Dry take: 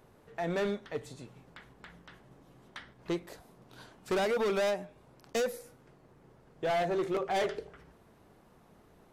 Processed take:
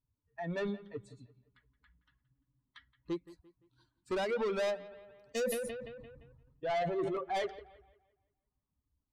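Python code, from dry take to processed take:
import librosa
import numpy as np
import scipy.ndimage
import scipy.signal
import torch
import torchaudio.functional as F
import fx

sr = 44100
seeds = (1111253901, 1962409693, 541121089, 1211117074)

y = fx.bin_expand(x, sr, power=2.0)
y = scipy.signal.sosfilt(scipy.signal.butter(2, 7400.0, 'lowpass', fs=sr, output='sos'), y)
y = 10.0 ** (-29.5 / 20.0) * np.tanh(y / 10.0 ** (-29.5 / 20.0))
y = fx.echo_bbd(y, sr, ms=172, stages=4096, feedback_pct=38, wet_db=-18.0)
y = fx.sustainer(y, sr, db_per_s=33.0, at=(4.82, 7.19))
y = y * 10.0 ** (1.5 / 20.0)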